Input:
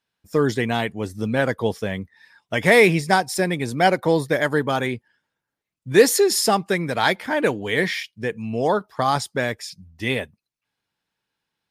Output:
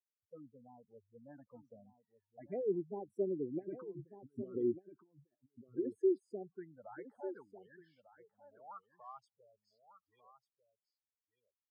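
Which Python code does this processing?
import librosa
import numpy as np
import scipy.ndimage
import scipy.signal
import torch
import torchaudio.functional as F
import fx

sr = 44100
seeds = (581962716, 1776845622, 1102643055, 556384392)

y = fx.doppler_pass(x, sr, speed_mps=20, closest_m=1.5, pass_at_s=4.2)
y = fx.over_compress(y, sr, threshold_db=-40.0, ratio=-0.5)
y = fx.env_phaser(y, sr, low_hz=220.0, high_hz=1500.0, full_db=-34.0)
y = fx.spec_gate(y, sr, threshold_db=-10, keep='strong')
y = fx.filter_sweep_bandpass(y, sr, from_hz=370.0, to_hz=1400.0, start_s=6.32, end_s=9.08, q=3.5)
y = y + 10.0 ** (-13.0 / 20.0) * np.pad(y, (int(1197 * sr / 1000.0), 0))[:len(y)]
y = y * 10.0 ** (9.5 / 20.0)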